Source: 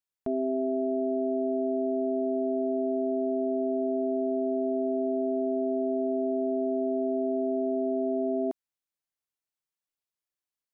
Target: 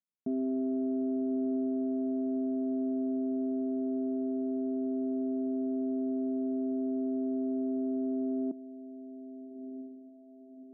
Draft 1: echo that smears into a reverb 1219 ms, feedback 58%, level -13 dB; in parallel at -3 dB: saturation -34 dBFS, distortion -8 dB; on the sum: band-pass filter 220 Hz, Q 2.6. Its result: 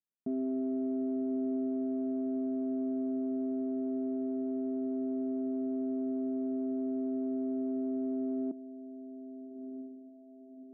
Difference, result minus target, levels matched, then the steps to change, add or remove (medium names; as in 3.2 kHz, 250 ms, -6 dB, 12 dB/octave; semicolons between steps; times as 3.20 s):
saturation: distortion +9 dB
change: saturation -24.5 dBFS, distortion -17 dB